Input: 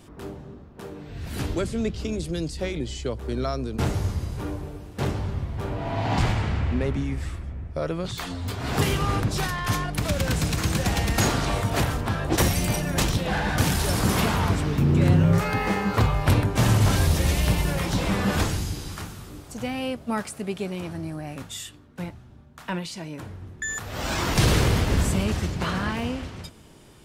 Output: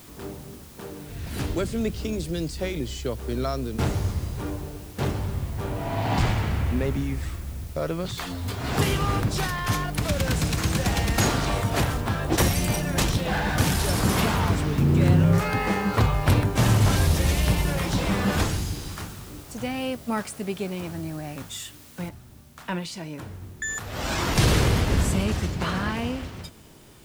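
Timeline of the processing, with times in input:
22.09 noise floor step -50 dB -59 dB

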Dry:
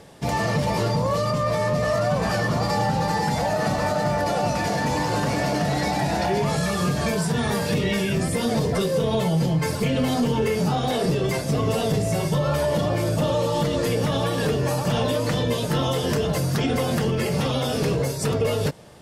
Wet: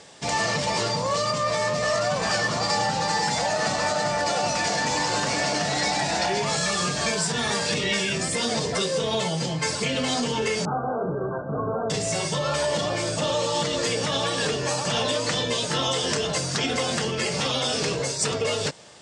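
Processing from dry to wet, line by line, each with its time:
10.65–11.9 brick-wall FIR low-pass 1600 Hz
whole clip: steep low-pass 8400 Hz 48 dB/oct; tilt +3 dB/oct

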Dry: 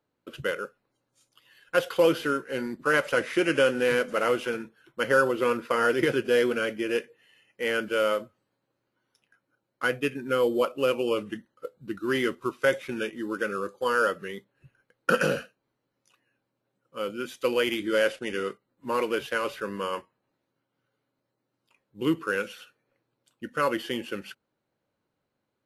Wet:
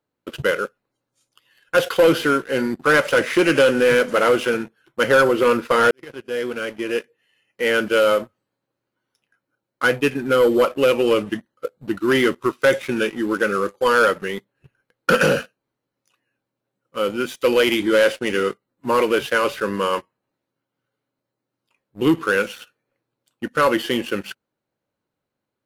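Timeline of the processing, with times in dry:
5.91–7.95 fade in
whole clip: sample leveller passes 2; gain +2.5 dB

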